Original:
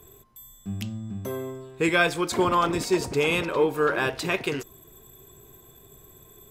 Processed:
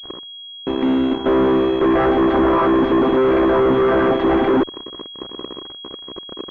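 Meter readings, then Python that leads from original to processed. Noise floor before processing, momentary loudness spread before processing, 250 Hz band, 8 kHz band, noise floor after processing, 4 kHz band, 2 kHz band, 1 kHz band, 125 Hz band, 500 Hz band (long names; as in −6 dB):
−53 dBFS, 12 LU, +13.5 dB, below −20 dB, −36 dBFS, +5.5 dB, 0.0 dB, +8.0 dB, +3.5 dB, +10.5 dB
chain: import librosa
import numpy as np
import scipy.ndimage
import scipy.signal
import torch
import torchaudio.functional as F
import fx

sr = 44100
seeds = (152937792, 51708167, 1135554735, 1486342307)

y = fx.chord_vocoder(x, sr, chord='major triad', root=60)
y = fx.fuzz(y, sr, gain_db=45.0, gate_db=-52.0)
y = fx.pwm(y, sr, carrier_hz=3300.0)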